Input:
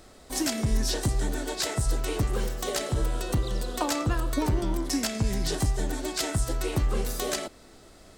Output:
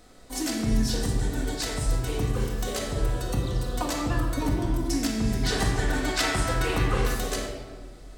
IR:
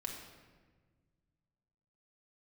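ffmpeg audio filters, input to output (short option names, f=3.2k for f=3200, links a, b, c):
-filter_complex "[0:a]asettb=1/sr,asplit=3[a][b][c];[a]atrim=end=5.434[d];[b]atrim=start=5.43:end=7.15,asetpts=PTS-STARTPTS,afade=t=in:d=0.004:c=qsin,afade=t=out:st=1.716:d=0.004:c=qsin,equalizer=f=1.6k:w=0.45:g=11.5[e];[c]atrim=start=7.146[f];[d][e]acrossfade=d=0.004:c1=hsin:c2=qsin[g];[g][f]acrossfade=d=0.004:c1=qsin:c2=hsin[h];[1:a]atrim=start_sample=2205[i];[h][i]afir=irnorm=-1:irlink=0"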